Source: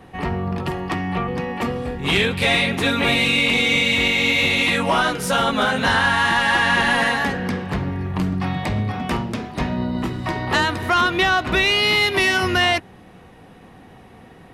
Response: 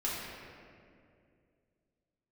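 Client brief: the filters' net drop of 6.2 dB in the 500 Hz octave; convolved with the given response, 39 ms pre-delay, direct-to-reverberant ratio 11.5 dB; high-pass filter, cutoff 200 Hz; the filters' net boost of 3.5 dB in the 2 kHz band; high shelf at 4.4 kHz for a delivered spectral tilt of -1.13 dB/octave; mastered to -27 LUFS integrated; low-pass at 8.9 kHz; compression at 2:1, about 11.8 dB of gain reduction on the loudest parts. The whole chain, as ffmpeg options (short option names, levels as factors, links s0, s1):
-filter_complex "[0:a]highpass=200,lowpass=8900,equalizer=f=500:t=o:g=-8.5,equalizer=f=2000:t=o:g=5.5,highshelf=f=4400:g=-4,acompressor=threshold=0.0178:ratio=2,asplit=2[s0][s1];[1:a]atrim=start_sample=2205,adelay=39[s2];[s1][s2]afir=irnorm=-1:irlink=0,volume=0.133[s3];[s0][s3]amix=inputs=2:normalize=0,volume=1.12"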